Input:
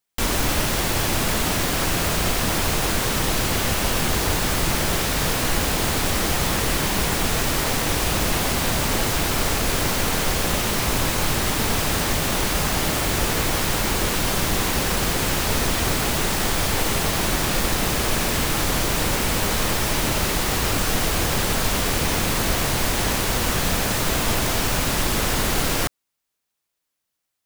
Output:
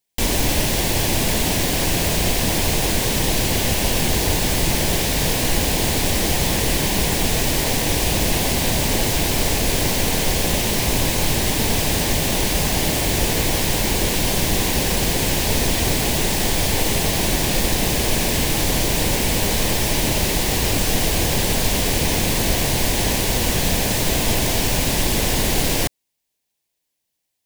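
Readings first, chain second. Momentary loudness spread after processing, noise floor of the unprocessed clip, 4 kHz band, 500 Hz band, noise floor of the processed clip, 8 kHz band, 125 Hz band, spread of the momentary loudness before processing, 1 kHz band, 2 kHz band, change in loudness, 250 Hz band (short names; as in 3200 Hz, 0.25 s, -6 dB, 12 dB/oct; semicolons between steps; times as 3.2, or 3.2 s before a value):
0 LU, -80 dBFS, +2.5 dB, +2.5 dB, -77 dBFS, +3.0 dB, +3.0 dB, 0 LU, -1.0 dB, 0.0 dB, +2.5 dB, +3.0 dB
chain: bell 1300 Hz -14 dB 0.49 oct; gain +3 dB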